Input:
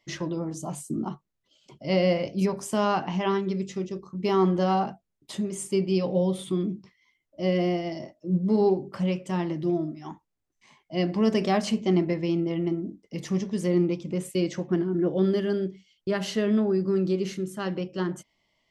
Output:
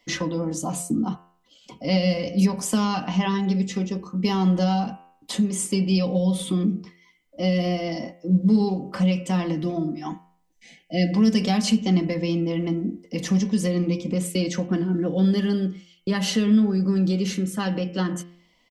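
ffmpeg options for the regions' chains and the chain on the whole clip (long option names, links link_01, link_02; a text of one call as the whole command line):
ffmpeg -i in.wav -filter_complex "[0:a]asettb=1/sr,asplit=3[link_01][link_02][link_03];[link_01]atrim=end=10.104[link_04];[link_02]atrim=start=10.1:end=11.14,asetpts=PTS-STARTPTS,afade=type=in:duration=0.004:curve=qsin,afade=type=out:start_time=1.036:duration=0.004:curve=qsin,asuperstop=centerf=1100:order=8:qfactor=1.3,aecho=1:1:6:0.38,atrim=end_sample=45864[link_05];[link_03]atrim=start=11.136[link_06];[link_04][link_05]acrossfade=duration=0.004:curve1=hsin:curve2=qsin[link_07];[link_07][link_06]acrossfade=duration=0.004:curve1=qsin:curve2=hsin,aecho=1:1:4:0.6,bandreject=frequency=87.19:width_type=h:width=4,bandreject=frequency=174.38:width_type=h:width=4,bandreject=frequency=261.57:width_type=h:width=4,bandreject=frequency=348.76:width_type=h:width=4,bandreject=frequency=435.95:width_type=h:width=4,bandreject=frequency=523.14:width_type=h:width=4,bandreject=frequency=610.33:width_type=h:width=4,bandreject=frequency=697.52:width_type=h:width=4,bandreject=frequency=784.71:width_type=h:width=4,bandreject=frequency=871.9:width_type=h:width=4,bandreject=frequency=959.09:width_type=h:width=4,bandreject=frequency=1046.28:width_type=h:width=4,bandreject=frequency=1133.47:width_type=h:width=4,bandreject=frequency=1220.66:width_type=h:width=4,bandreject=frequency=1307.85:width_type=h:width=4,bandreject=frequency=1395.04:width_type=h:width=4,bandreject=frequency=1482.23:width_type=h:width=4,bandreject=frequency=1569.42:width_type=h:width=4,bandreject=frequency=1656.61:width_type=h:width=4,bandreject=frequency=1743.8:width_type=h:width=4,bandreject=frequency=1830.99:width_type=h:width=4,bandreject=frequency=1918.18:width_type=h:width=4,bandreject=frequency=2005.37:width_type=h:width=4,bandreject=frequency=2092.56:width_type=h:width=4,bandreject=frequency=2179.75:width_type=h:width=4,bandreject=frequency=2266.94:width_type=h:width=4,bandreject=frequency=2354.13:width_type=h:width=4,bandreject=frequency=2441.32:width_type=h:width=4,bandreject=frequency=2528.51:width_type=h:width=4,bandreject=frequency=2615.7:width_type=h:width=4,bandreject=frequency=2702.89:width_type=h:width=4,bandreject=frequency=2790.08:width_type=h:width=4,bandreject=frequency=2877.27:width_type=h:width=4,bandreject=frequency=2964.46:width_type=h:width=4,bandreject=frequency=3051.65:width_type=h:width=4,bandreject=frequency=3138.84:width_type=h:width=4,acrossover=split=200|3000[link_08][link_09][link_10];[link_09]acompressor=threshold=-33dB:ratio=6[link_11];[link_08][link_11][link_10]amix=inputs=3:normalize=0,volume=7.5dB" out.wav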